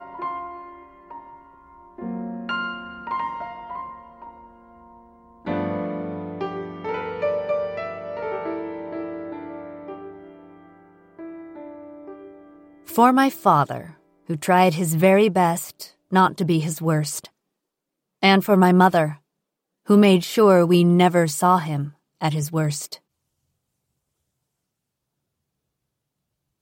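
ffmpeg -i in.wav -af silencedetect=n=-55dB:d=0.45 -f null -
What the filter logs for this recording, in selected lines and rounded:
silence_start: 17.30
silence_end: 18.22 | silence_duration: 0.92
silence_start: 19.19
silence_end: 19.85 | silence_duration: 0.66
silence_start: 22.99
silence_end: 26.61 | silence_duration: 3.62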